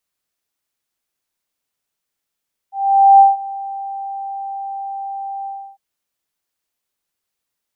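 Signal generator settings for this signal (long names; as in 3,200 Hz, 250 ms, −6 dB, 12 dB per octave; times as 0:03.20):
note with an ADSR envelope sine 787 Hz, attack 475 ms, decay 168 ms, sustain −20.5 dB, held 2.74 s, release 312 ms −3 dBFS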